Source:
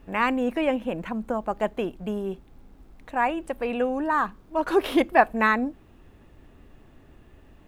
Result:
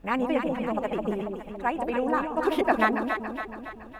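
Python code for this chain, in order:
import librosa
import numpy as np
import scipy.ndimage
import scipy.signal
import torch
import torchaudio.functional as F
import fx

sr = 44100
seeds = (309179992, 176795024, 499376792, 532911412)

y = fx.stretch_vocoder(x, sr, factor=0.52)
y = fx.echo_alternate(y, sr, ms=140, hz=860.0, feedback_pct=73, wet_db=-3)
y = F.gain(torch.from_numpy(y), -1.5).numpy()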